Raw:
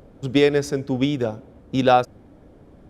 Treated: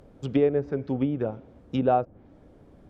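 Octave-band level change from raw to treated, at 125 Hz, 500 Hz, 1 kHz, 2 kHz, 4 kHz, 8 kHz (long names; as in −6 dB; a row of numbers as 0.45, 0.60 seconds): −4.5 dB, −5.0 dB, −7.0 dB, −14.5 dB, −17.5 dB, below −20 dB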